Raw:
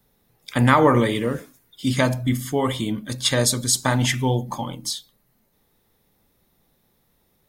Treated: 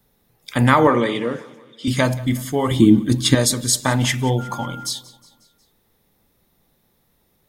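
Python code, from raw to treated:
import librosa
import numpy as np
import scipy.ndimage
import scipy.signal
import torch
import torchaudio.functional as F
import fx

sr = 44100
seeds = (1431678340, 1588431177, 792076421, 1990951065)

p1 = fx.bandpass_edges(x, sr, low_hz=210.0, high_hz=5700.0, at=(0.87, 1.88))
p2 = fx.low_shelf_res(p1, sr, hz=450.0, db=9.0, q=3.0, at=(2.71, 3.35))
p3 = fx.dmg_tone(p2, sr, hz=1400.0, level_db=-34.0, at=(4.38, 4.85), fade=0.02)
p4 = p3 + fx.echo_feedback(p3, sr, ms=181, feedback_pct=55, wet_db=-21, dry=0)
y = p4 * 10.0 ** (1.5 / 20.0)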